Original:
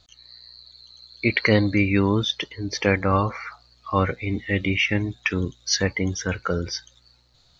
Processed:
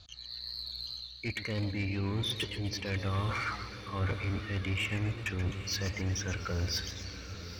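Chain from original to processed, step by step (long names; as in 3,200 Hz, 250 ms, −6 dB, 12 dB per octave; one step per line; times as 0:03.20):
reversed playback
downward compressor 12 to 1, threshold −34 dBFS, peak gain reduction 21.5 dB
reversed playback
low-pass filter 4,500 Hz 12 dB per octave
parametric band 75 Hz +10 dB 1.4 octaves
automatic gain control gain up to 5 dB
high-shelf EQ 2,600 Hz +9.5 dB
notch filter 2,000 Hz, Q 8.7
soft clipping −27 dBFS, distortion −12 dB
on a send: feedback delay with all-pass diffusion 904 ms, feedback 64%, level −12 dB
on the sum: feedback echo with a swinging delay time 127 ms, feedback 50%, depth 173 cents, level −11 dB
level −1.5 dB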